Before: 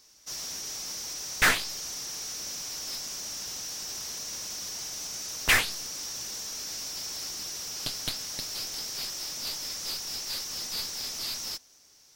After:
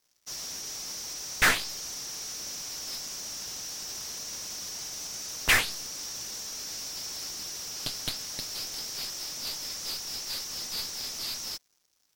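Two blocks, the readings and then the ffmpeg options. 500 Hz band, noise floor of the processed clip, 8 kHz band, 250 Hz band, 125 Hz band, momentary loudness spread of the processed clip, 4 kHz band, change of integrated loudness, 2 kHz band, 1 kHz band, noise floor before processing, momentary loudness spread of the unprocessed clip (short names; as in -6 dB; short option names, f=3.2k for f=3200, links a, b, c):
-0.5 dB, -71 dBFS, -1.0 dB, -0.5 dB, 0.0 dB, 11 LU, -0.5 dB, -0.5 dB, 0.0 dB, 0.0 dB, -58 dBFS, 10 LU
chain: -af "aeval=exprs='sgn(val(0))*max(abs(val(0))-0.00178,0)':c=same"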